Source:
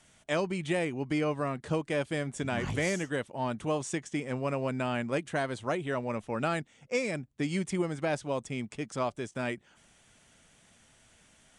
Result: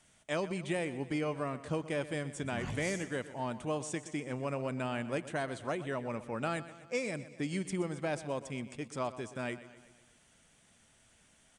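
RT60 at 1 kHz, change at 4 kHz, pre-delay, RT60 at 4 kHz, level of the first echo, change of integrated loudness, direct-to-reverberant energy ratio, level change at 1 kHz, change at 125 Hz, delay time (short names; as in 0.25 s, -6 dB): none, -4.5 dB, none, none, -15.0 dB, -4.5 dB, none, -4.5 dB, -4.5 dB, 0.124 s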